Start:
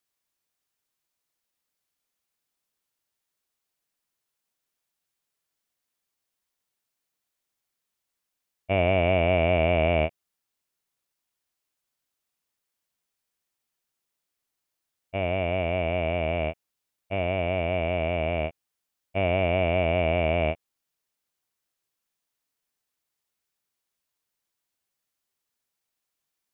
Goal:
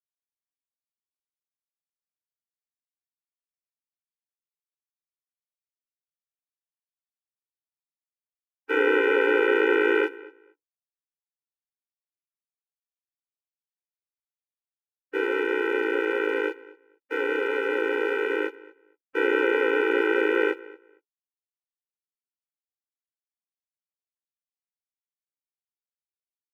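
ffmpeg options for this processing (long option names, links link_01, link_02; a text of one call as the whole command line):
ffmpeg -i in.wav -filter_complex "[0:a]bandreject=frequency=50:width_type=h:width=6,bandreject=frequency=100:width_type=h:width=6,bandreject=frequency=150:width_type=h:width=6,bandreject=frequency=200:width_type=h:width=6,bandreject=frequency=250:width_type=h:width=6,bandreject=frequency=300:width_type=h:width=6,asplit=3[link_01][link_02][link_03];[link_02]asetrate=29433,aresample=44100,atempo=1.49831,volume=-1dB[link_04];[link_03]asetrate=37084,aresample=44100,atempo=1.18921,volume=-8dB[link_05];[link_01][link_04][link_05]amix=inputs=3:normalize=0,highshelf=frequency=2300:gain=6,acrossover=split=350[link_06][link_07];[link_06]acontrast=25[link_08];[link_08][link_07]amix=inputs=2:normalize=0,aeval=exprs='sgn(val(0))*max(abs(val(0))-0.00473,0)':channel_layout=same,equalizer=frequency=1300:width_type=o:width=0.4:gain=13.5,asplit=2[link_09][link_10];[link_10]adelay=230,lowpass=frequency=3100:poles=1,volume=-20.5dB,asplit=2[link_11][link_12];[link_12]adelay=230,lowpass=frequency=3100:poles=1,volume=0.2[link_13];[link_11][link_13]amix=inputs=2:normalize=0[link_14];[link_09][link_14]amix=inputs=2:normalize=0,afftfilt=real='re*eq(mod(floor(b*sr/1024/260),2),1)':imag='im*eq(mod(floor(b*sr/1024/260),2),1)':win_size=1024:overlap=0.75" out.wav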